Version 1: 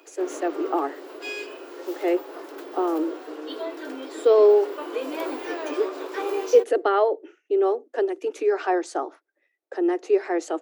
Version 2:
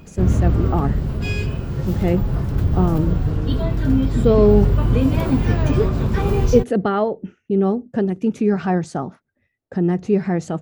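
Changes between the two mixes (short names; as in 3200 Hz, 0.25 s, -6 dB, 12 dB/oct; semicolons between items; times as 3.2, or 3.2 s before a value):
background +3.5 dB; master: remove steep high-pass 300 Hz 96 dB/oct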